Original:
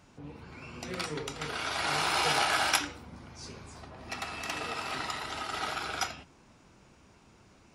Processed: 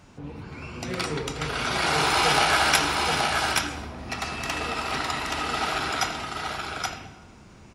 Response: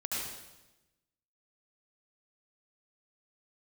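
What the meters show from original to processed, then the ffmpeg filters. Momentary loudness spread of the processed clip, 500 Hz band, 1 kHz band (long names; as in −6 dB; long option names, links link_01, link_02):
16 LU, +8.5 dB, +8.0 dB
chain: -filter_complex "[0:a]aecho=1:1:825:0.668,acontrast=78,asplit=2[link_01][link_02];[1:a]atrim=start_sample=2205,lowshelf=frequency=210:gain=12,highshelf=frequency=5500:gain=-12[link_03];[link_02][link_03]afir=irnorm=-1:irlink=0,volume=-12.5dB[link_04];[link_01][link_04]amix=inputs=2:normalize=0,volume=-2dB"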